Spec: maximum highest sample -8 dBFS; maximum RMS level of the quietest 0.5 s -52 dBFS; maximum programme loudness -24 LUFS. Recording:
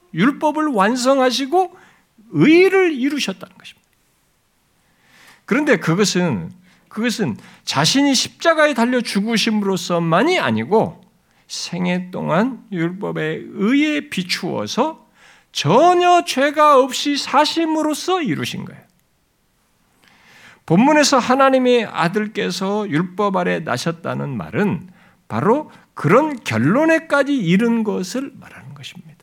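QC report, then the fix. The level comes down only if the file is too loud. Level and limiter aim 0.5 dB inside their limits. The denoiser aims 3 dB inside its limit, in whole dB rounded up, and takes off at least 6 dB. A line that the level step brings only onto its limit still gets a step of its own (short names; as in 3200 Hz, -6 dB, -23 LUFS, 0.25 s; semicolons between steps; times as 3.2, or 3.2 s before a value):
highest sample -2.5 dBFS: fail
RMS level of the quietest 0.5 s -62 dBFS: OK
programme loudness -17.0 LUFS: fail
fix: gain -7.5 dB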